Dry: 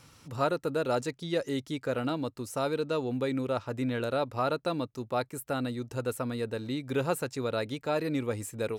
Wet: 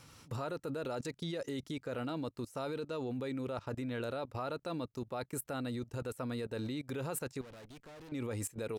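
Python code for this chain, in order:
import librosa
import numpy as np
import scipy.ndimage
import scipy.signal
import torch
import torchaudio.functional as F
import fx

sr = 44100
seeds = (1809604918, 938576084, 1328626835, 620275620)

y = fx.level_steps(x, sr, step_db=20)
y = fx.tube_stage(y, sr, drive_db=53.0, bias=0.75, at=(7.41, 8.12))
y = y * librosa.db_to_amplitude(2.5)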